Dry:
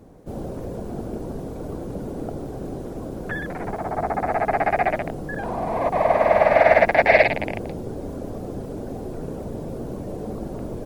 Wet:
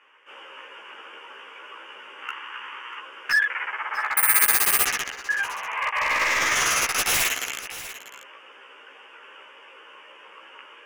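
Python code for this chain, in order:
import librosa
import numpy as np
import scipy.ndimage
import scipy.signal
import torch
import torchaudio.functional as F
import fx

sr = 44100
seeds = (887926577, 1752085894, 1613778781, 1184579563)

y = fx.lower_of_two(x, sr, delay_ms=0.65, at=(2.22, 3.0))
y = scipy.signal.sosfilt(scipy.signal.butter(4, 820.0, 'highpass', fs=sr, output='sos'), y)
y = fx.rider(y, sr, range_db=3, speed_s=2.0)
y = fx.lowpass_res(y, sr, hz=2900.0, q=10.0)
y = fx.fixed_phaser(y, sr, hz=1700.0, stages=4)
y = 10.0 ** (-22.0 / 20.0) * (np.abs((y / 10.0 ** (-22.0 / 20.0) + 3.0) % 4.0 - 2.0) - 1.0)
y = fx.doubler(y, sr, ms=15.0, db=-2.0)
y = y + 10.0 ** (-14.5 / 20.0) * np.pad(y, (int(641 * sr / 1000.0), 0))[:len(y)]
y = fx.resample_bad(y, sr, factor=4, down='filtered', up='zero_stuff', at=(4.17, 4.85))
y = y * 10.0 ** (3.5 / 20.0)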